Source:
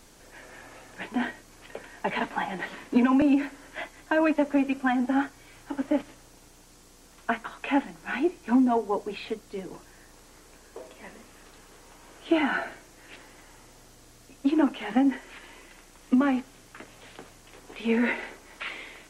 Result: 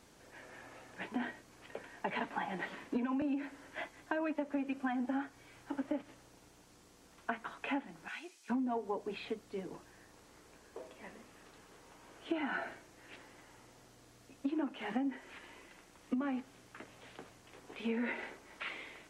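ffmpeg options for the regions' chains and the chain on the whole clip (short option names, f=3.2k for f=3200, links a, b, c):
-filter_complex "[0:a]asettb=1/sr,asplit=3[a][b][c];[a]atrim=end=8.084[d];[b]atrim=start=8.08:end=8.5,asetpts=PTS-STARTPTS,afade=t=in:d=0.004:c=qsin,afade=t=out:st=0.416:d=0.004:c=qsin,bandpass=f=5.6k:t=q:w=0.68,highshelf=f=5.9k:g=8.5[e];[c]atrim=start=8.496[f];[d][e]acrossfade=d=0.004:c1=hsin:c2=qsin[g];[g][f]acrossfade=d=0.004:c1=qsin:c2=hsin,highpass=55,highshelf=f=4.9k:g=-6.5,acompressor=threshold=-27dB:ratio=6,volume=-5.5dB"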